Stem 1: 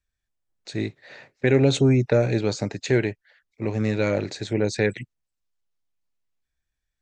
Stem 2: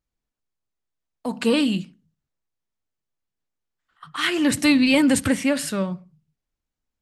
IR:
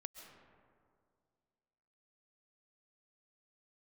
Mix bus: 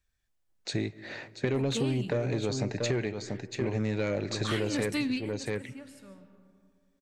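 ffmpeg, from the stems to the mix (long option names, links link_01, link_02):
-filter_complex "[0:a]asoftclip=type=tanh:threshold=-13.5dB,volume=2dB,asplit=4[link_01][link_02][link_03][link_04];[link_02]volume=-11dB[link_05];[link_03]volume=-10dB[link_06];[1:a]adelay=300,volume=-5dB,asplit=2[link_07][link_08];[link_08]volume=-19.5dB[link_09];[link_04]apad=whole_len=322394[link_10];[link_07][link_10]sidechaingate=range=-33dB:threshold=-50dB:ratio=16:detection=peak[link_11];[2:a]atrim=start_sample=2205[link_12];[link_05][link_09]amix=inputs=2:normalize=0[link_13];[link_13][link_12]afir=irnorm=-1:irlink=0[link_14];[link_06]aecho=0:1:685:1[link_15];[link_01][link_11][link_14][link_15]amix=inputs=4:normalize=0,acompressor=threshold=-27dB:ratio=6"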